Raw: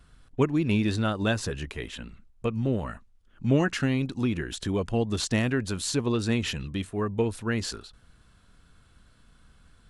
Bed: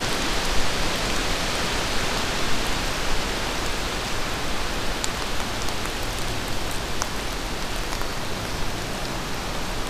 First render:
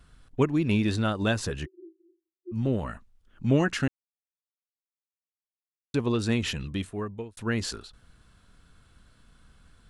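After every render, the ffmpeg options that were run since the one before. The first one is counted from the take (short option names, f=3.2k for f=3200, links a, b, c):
-filter_complex "[0:a]asplit=3[a][b][c];[a]afade=t=out:st=1.65:d=0.02[d];[b]asuperpass=centerf=350:order=12:qfactor=6.1,afade=t=in:st=1.65:d=0.02,afade=t=out:st=2.51:d=0.02[e];[c]afade=t=in:st=2.51:d=0.02[f];[d][e][f]amix=inputs=3:normalize=0,asplit=4[g][h][i][j];[g]atrim=end=3.88,asetpts=PTS-STARTPTS,afade=t=out:st=3.876:d=0.004:c=hsin[k];[h]atrim=start=3.88:end=5.94,asetpts=PTS-STARTPTS,volume=0[l];[i]atrim=start=5.94:end=7.37,asetpts=PTS-STARTPTS,afade=t=in:d=0.004:c=hsin,afade=t=out:st=0.85:d=0.58[m];[j]atrim=start=7.37,asetpts=PTS-STARTPTS,afade=t=in:d=0.004:c=hsin[n];[k][l][m][n]concat=n=4:v=0:a=1"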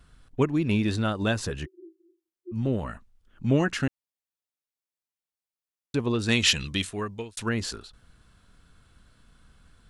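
-filter_complex "[0:a]asettb=1/sr,asplit=3[a][b][c];[a]atrim=end=6.284[d];[b]atrim=start=6.28:end=7.49,asetpts=PTS-STARTPTS,afade=t=in:d=0.004:c=qsin,afade=t=out:st=1.206:d=0.004:c=qsin,equalizer=f=5.3k:w=0.33:g=13.5[e];[c]atrim=start=7.486[f];[d][e]acrossfade=d=0.004:c1=hsin:c2=qsin[g];[g][f]acrossfade=d=0.004:c1=qsin:c2=hsin"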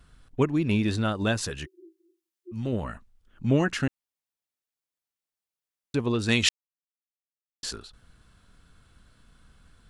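-filter_complex "[0:a]asettb=1/sr,asplit=3[a][b][c];[a]atrim=end=1.374[d];[b]atrim=start=1.37:end=2.73,asetpts=PTS-STARTPTS,afade=t=in:d=0.004:c=qsin,afade=t=out:st=1.356:d=0.004:c=qsin,tiltshelf=f=1.4k:g=-4[e];[c]atrim=start=2.726[f];[d][e]acrossfade=d=0.004:c1=hsin:c2=qsin[g];[g][f]acrossfade=d=0.004:c1=qsin:c2=hsin,asplit=3[h][i][j];[h]atrim=end=6.49,asetpts=PTS-STARTPTS,afade=t=out:st=6.486:d=0.004:c=hsin[k];[i]atrim=start=6.49:end=7.63,asetpts=PTS-STARTPTS,volume=0[l];[j]atrim=start=7.63,asetpts=PTS-STARTPTS,afade=t=in:d=0.004:c=hsin[m];[k][l][m]concat=n=3:v=0:a=1"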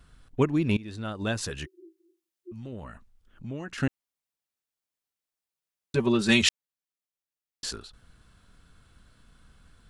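-filter_complex "[0:a]asettb=1/sr,asplit=3[a][b][c];[a]atrim=end=2.524[d];[b]atrim=start=2.52:end=3.78,asetpts=PTS-STARTPTS,afade=t=in:d=0.004:c=qsin,afade=t=out:st=1.256:d=0.004:c=qsin,acompressor=threshold=-44dB:ratio=2:attack=3.2:release=140:knee=1:detection=peak[e];[c]atrim=start=3.776[f];[d][e]acrossfade=d=0.004:c1=hsin:c2=qsin[g];[g][f]acrossfade=d=0.004:c1=qsin:c2=hsin,asettb=1/sr,asplit=3[h][i][j];[h]atrim=end=5.954[k];[i]atrim=start=5.95:end=6.42,asetpts=PTS-STARTPTS,afade=t=in:d=0.004:c=qsin,afade=t=out:st=0.466:d=0.004:c=qsin,aecho=1:1:5.2:0.96,atrim=end_sample=20727[l];[j]atrim=start=6.416[m];[k][l]acrossfade=d=0.004:c1=hsin:c2=qsin[n];[n][m]acrossfade=d=0.004:c1=qsin:c2=hsin,asplit=2[o][p];[o]atrim=end=0.77,asetpts=PTS-STARTPTS,afade=t=out:st=0.766:d=0.004:c=hsin:silence=0.0891251[q];[p]atrim=start=0.77,asetpts=PTS-STARTPTS,afade=t=in:d=0.84:silence=0.0891251[r];[q][r]concat=n=2:v=0:a=1"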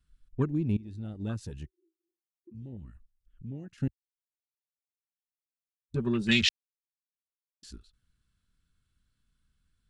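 -af "afwtdn=0.0251,equalizer=f=670:w=0.7:g=-13"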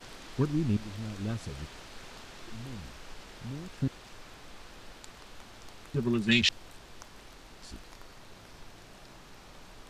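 -filter_complex "[1:a]volume=-23dB[a];[0:a][a]amix=inputs=2:normalize=0"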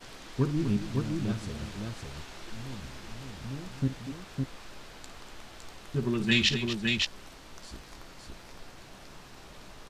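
-filter_complex "[0:a]asplit=2[a][b];[b]adelay=15,volume=-11.5dB[c];[a][c]amix=inputs=2:normalize=0,aecho=1:1:54|242|560:0.224|0.266|0.668"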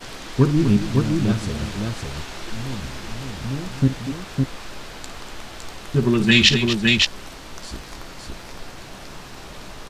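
-af "volume=11dB,alimiter=limit=-1dB:level=0:latency=1"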